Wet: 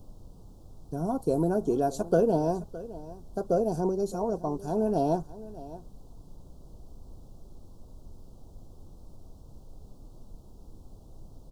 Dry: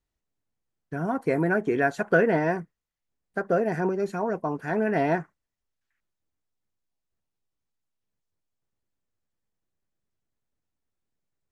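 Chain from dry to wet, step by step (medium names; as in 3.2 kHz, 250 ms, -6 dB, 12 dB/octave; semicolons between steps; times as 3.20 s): treble shelf 3.6 kHz +9.5 dB; added noise brown -44 dBFS; Butterworth band-stop 2 kHz, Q 0.56; delay 613 ms -17 dB; trim -1.5 dB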